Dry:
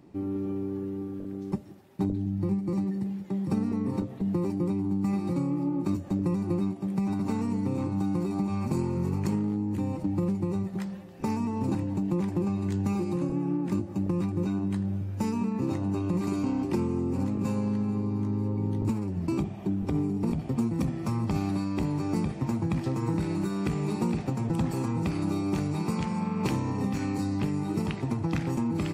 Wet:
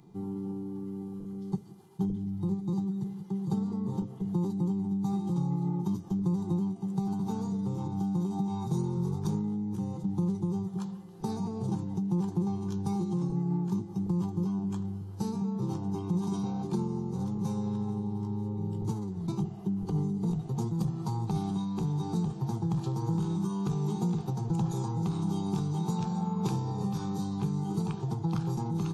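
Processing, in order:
steady tone 2,400 Hz −53 dBFS
formants moved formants −3 semitones
phaser with its sweep stopped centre 390 Hz, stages 8

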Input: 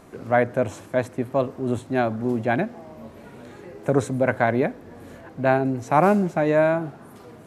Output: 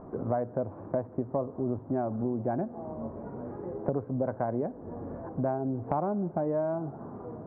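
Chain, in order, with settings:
inverse Chebyshev low-pass filter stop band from 6,000 Hz, stop band 80 dB
downward compressor 6 to 1, threshold −31 dBFS, peak gain reduction 17 dB
level +3.5 dB

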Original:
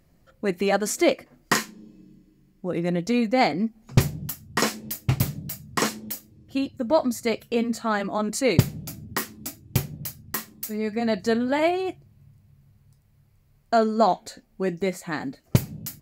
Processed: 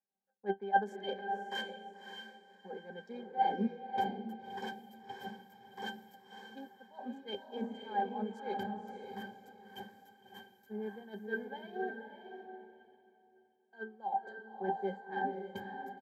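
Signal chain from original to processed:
adaptive Wiener filter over 15 samples
high-pass filter 340 Hz 24 dB per octave
parametric band 13,000 Hz +12.5 dB 0.25 octaves
comb filter 1.3 ms, depth 66%
reversed playback
downward compressor 16 to 1, threshold −35 dBFS, peak gain reduction 23.5 dB
reversed playback
resonances in every octave G, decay 0.12 s
on a send: feedback delay with all-pass diffusion 567 ms, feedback 41%, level −3 dB
on the sum: multiband upward and downward expander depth 70%
level +12 dB

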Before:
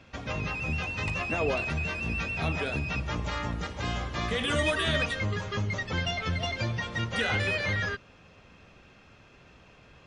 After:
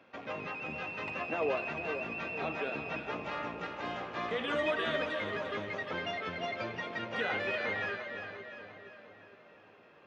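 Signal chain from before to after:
loose part that buzzes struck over −42 dBFS, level −36 dBFS
high-pass filter 340 Hz 12 dB per octave
head-to-tape spacing loss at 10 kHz 29 dB
echo with a time of its own for lows and highs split 860 Hz, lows 463 ms, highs 348 ms, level −7.5 dB

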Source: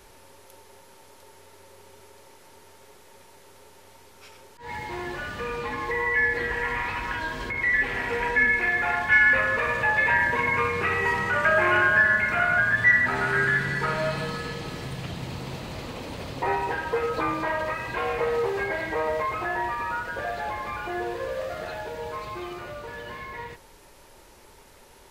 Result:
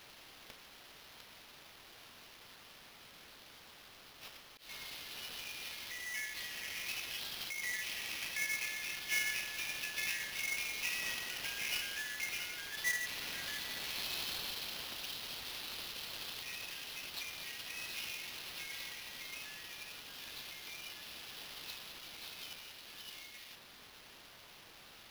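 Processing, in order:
Butterworth high-pass 2,800 Hz 36 dB per octave
sample-rate reduction 8,200 Hz, jitter 20%
level +2.5 dB

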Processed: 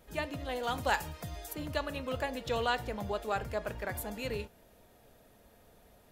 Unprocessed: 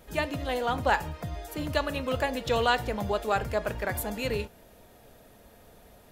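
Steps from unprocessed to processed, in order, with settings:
0:00.63–0:01.53: high-shelf EQ 3,300 Hz +11 dB
level −6.5 dB

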